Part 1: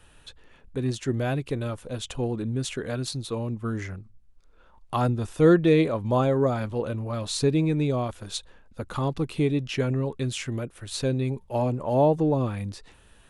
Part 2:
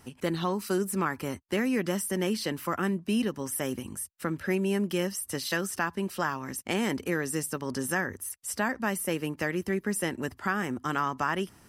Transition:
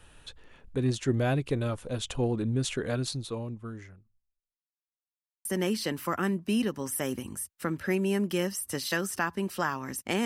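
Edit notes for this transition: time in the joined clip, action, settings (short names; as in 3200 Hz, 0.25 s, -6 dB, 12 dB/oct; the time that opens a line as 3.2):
part 1
2.95–4.62 fade out quadratic
4.62–5.45 mute
5.45 switch to part 2 from 2.05 s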